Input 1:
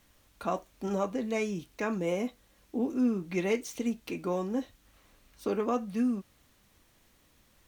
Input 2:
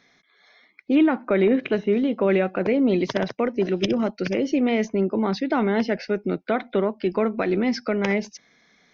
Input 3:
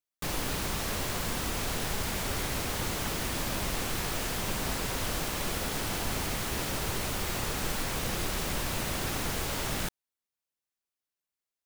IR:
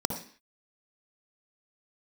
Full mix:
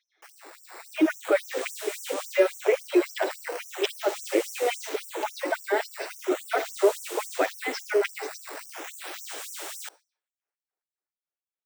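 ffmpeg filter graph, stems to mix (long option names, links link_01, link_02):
-filter_complex "[0:a]adelay=1150,volume=-3dB[link_01];[1:a]lowpass=4900,asplit=2[link_02][link_03];[link_03]adelay=7.7,afreqshift=1.9[link_04];[link_02][link_04]amix=inputs=2:normalize=1,volume=-7.5dB,asplit=3[link_05][link_06][link_07];[link_06]volume=-14.5dB[link_08];[2:a]acrusher=samples=8:mix=1:aa=0.000001:lfo=1:lforange=12.8:lforate=0.39,aexciter=amount=1.7:drive=1:freq=7300,volume=-14dB,asplit=2[link_09][link_10];[link_10]volume=-22dB[link_11];[link_07]apad=whole_len=389196[link_12];[link_01][link_12]sidechaincompress=threshold=-40dB:ratio=8:attack=16:release=718[link_13];[3:a]atrim=start_sample=2205[link_14];[link_08][link_11]amix=inputs=2:normalize=0[link_15];[link_15][link_14]afir=irnorm=-1:irlink=0[link_16];[link_13][link_05][link_09][link_16]amix=inputs=4:normalize=0,dynaudnorm=framelen=140:gausssize=13:maxgain=10dB,afftfilt=real='re*gte(b*sr/1024,270*pow(5600/270,0.5+0.5*sin(2*PI*3.6*pts/sr)))':imag='im*gte(b*sr/1024,270*pow(5600/270,0.5+0.5*sin(2*PI*3.6*pts/sr)))':win_size=1024:overlap=0.75"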